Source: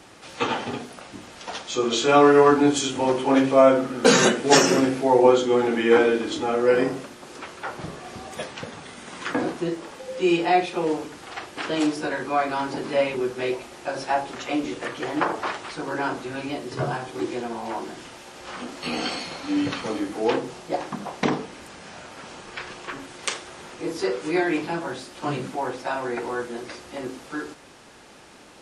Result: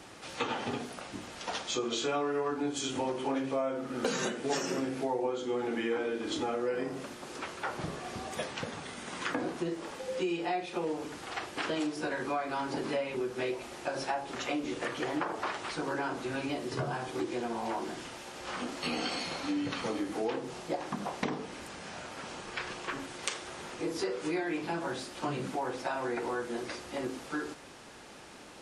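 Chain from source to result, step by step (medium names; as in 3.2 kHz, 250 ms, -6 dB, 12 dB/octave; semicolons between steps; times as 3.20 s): compression 6:1, threshold -28 dBFS, peak gain reduction 17 dB; trim -2 dB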